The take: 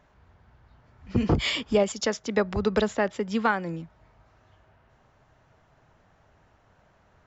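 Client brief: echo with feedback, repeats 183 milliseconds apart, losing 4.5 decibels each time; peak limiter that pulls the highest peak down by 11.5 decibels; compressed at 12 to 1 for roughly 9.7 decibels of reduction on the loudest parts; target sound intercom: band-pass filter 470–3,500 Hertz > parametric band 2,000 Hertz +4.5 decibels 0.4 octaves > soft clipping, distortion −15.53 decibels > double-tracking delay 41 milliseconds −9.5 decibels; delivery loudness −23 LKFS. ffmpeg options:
ffmpeg -i in.wav -filter_complex "[0:a]acompressor=threshold=-27dB:ratio=12,alimiter=level_in=4dB:limit=-24dB:level=0:latency=1,volume=-4dB,highpass=470,lowpass=3500,equalizer=frequency=2000:width_type=o:width=0.4:gain=4.5,aecho=1:1:183|366|549|732|915|1098|1281|1464|1647:0.596|0.357|0.214|0.129|0.0772|0.0463|0.0278|0.0167|0.01,asoftclip=threshold=-33dB,asplit=2[link_01][link_02];[link_02]adelay=41,volume=-9.5dB[link_03];[link_01][link_03]amix=inputs=2:normalize=0,volume=18.5dB" out.wav

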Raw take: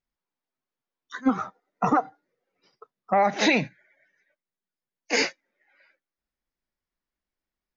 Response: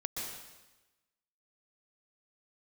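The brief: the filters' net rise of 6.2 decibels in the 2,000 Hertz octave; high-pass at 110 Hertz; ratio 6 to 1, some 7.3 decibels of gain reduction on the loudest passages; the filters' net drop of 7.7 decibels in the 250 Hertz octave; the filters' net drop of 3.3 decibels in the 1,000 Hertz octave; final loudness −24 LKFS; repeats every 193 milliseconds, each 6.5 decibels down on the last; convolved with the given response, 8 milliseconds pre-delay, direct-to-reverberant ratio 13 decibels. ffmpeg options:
-filter_complex "[0:a]highpass=110,equalizer=frequency=250:width_type=o:gain=-9,equalizer=frequency=1000:width_type=o:gain=-6,equalizer=frequency=2000:width_type=o:gain=8.5,acompressor=threshold=-21dB:ratio=6,aecho=1:1:193|386|579|772|965|1158:0.473|0.222|0.105|0.0491|0.0231|0.0109,asplit=2[link_01][link_02];[1:a]atrim=start_sample=2205,adelay=8[link_03];[link_02][link_03]afir=irnorm=-1:irlink=0,volume=-15dB[link_04];[link_01][link_04]amix=inputs=2:normalize=0,volume=4dB"

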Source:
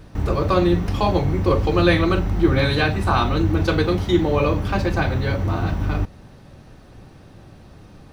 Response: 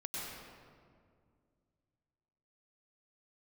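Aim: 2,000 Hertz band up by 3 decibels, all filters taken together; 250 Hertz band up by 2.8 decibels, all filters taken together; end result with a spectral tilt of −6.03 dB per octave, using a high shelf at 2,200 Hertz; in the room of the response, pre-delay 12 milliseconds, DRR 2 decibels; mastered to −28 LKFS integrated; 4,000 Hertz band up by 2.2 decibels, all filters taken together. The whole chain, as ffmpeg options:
-filter_complex "[0:a]equalizer=frequency=250:width_type=o:gain=4.5,equalizer=frequency=2000:width_type=o:gain=7,highshelf=frequency=2200:gain=-9,equalizer=frequency=4000:width_type=o:gain=8,asplit=2[link_01][link_02];[1:a]atrim=start_sample=2205,adelay=12[link_03];[link_02][link_03]afir=irnorm=-1:irlink=0,volume=-3.5dB[link_04];[link_01][link_04]amix=inputs=2:normalize=0,volume=-12.5dB"

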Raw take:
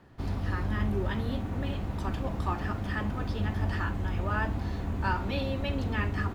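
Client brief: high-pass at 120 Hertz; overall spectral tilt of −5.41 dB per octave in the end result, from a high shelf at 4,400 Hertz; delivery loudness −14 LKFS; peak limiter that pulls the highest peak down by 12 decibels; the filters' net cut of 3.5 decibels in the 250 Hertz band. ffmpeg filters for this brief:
ffmpeg -i in.wav -af "highpass=120,equalizer=frequency=250:width_type=o:gain=-4,highshelf=frequency=4400:gain=-5.5,volume=25.5dB,alimiter=limit=-5dB:level=0:latency=1" out.wav

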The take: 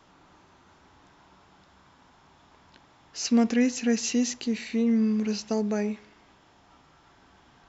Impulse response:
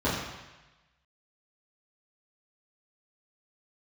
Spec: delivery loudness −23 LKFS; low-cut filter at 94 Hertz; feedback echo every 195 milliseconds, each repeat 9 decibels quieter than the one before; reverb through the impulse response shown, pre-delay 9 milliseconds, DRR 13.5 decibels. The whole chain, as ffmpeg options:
-filter_complex "[0:a]highpass=94,aecho=1:1:195|390|585|780:0.355|0.124|0.0435|0.0152,asplit=2[link_01][link_02];[1:a]atrim=start_sample=2205,adelay=9[link_03];[link_02][link_03]afir=irnorm=-1:irlink=0,volume=-27dB[link_04];[link_01][link_04]amix=inputs=2:normalize=0,volume=1.5dB"

